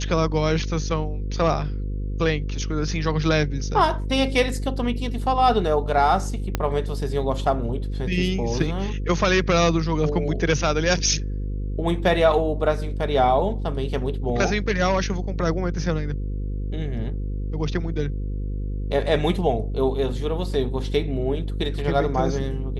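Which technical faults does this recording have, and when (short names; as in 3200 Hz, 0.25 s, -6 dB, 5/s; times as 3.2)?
buzz 50 Hz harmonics 10 -27 dBFS
6.55 pop -8 dBFS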